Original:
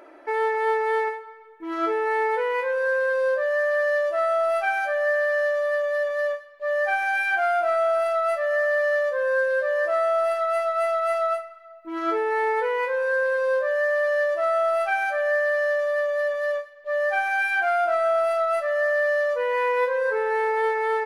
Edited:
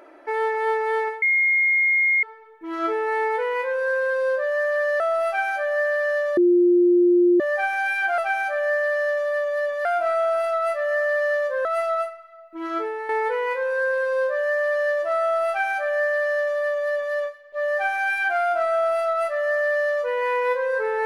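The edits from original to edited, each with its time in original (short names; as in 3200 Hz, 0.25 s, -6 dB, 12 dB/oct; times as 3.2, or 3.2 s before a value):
1.22 add tone 2140 Hz -16 dBFS 1.01 s
3.99–4.29 cut
5.66–6.69 bleep 352 Hz -13 dBFS
9.27–10.97 cut
11.95–12.41 fade out, to -9.5 dB
14.8–16.47 copy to 7.47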